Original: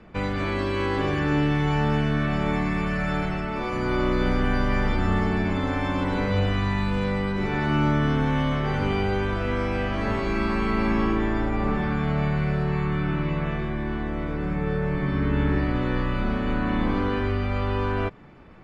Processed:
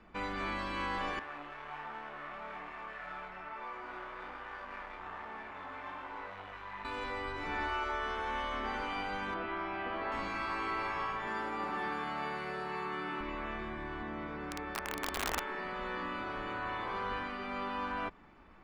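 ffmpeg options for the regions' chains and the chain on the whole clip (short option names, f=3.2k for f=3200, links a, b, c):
-filter_complex "[0:a]asettb=1/sr,asplit=3[a][b][c];[a]atrim=end=1.194[d];[b]atrim=start=1.19:end=6.85,asetpts=PTS-STARTPTS,afade=t=in:d=0.004:c=qsin,afade=t=out:st=5.656:d=0.004:c=qsin,asoftclip=type=hard:threshold=-26dB,acrossover=split=450 2700:gain=0.178 1 0.158[e][f][g];[e][f][g]amix=inputs=3:normalize=0,flanger=delay=18:depth=4.5:speed=1.2[h];[c]atrim=start=6.846[i];[d][h]acrossfade=d=0.004:c1=hsin:c2=qsin[j];[j][i]acrossfade=d=0.004:c1=qsin:c2=hsin,asettb=1/sr,asplit=3[k][l][m];[k]atrim=end=9.344[n];[l]atrim=start=9.34:end=10.12,asetpts=PTS-STARTPTS,afade=t=in:d=0.004:c=qsin,afade=t=out:st=0.776:d=0.004:c=qsin,lowpass=f=4.1k:w=0.5412,lowpass=f=4.1k:w=1.3066,tiltshelf=f=1.1k:g=3.5[o];[m]atrim=start=10.116[p];[n][o]acrossfade=d=0.004:c1=hsin:c2=qsin[q];[q][p]acrossfade=d=0.004:c1=qsin:c2=hsin,asettb=1/sr,asplit=3[r][s][t];[r]atrim=end=11.274[u];[s]atrim=start=11.27:end=13.21,asetpts=PTS-STARTPTS,afade=t=in:d=0.004:c=qsin,afade=t=out:st=1.936:d=0.004:c=qsin,highpass=210,highshelf=f=6k:g=8,asplit=2[v][w];[w]adelay=16,volume=-8dB[x];[v][x]amix=inputs=2:normalize=0,atrim=end_sample=85554[y];[t]atrim=start=13.206[z];[u][y]acrossfade=d=0.004:c1=hsin:c2=qsin[aa];[aa][z]acrossfade=d=0.004:c1=qsin:c2=hsin,asettb=1/sr,asplit=3[ab][ac][ad];[ab]atrim=end=14.024[ae];[ac]atrim=start=14.02:end=15.4,asetpts=PTS-STARTPTS,afade=t=in:d=0.004:c=qsin,afade=t=out:st=1.376:d=0.004:c=qsin,highpass=100,lowpass=6.1k,aeval=exprs='(mod(7.94*val(0)+1,2)-1)/7.94':c=same[af];[ad]atrim=start=15.396[ag];[ae][af]acrossfade=d=0.004:c1=hsin:c2=qsin[ah];[ah][ag]acrossfade=d=0.004:c1=qsin:c2=hsin,afftfilt=real='re*lt(hypot(re,im),0.282)':imag='im*lt(hypot(re,im),0.282)':win_size=1024:overlap=0.75,equalizer=f=125:t=o:w=1:g=-12,equalizer=f=500:t=o:w=1:g=-5,equalizer=f=1k:t=o:w=1:g=4,volume=-7.5dB"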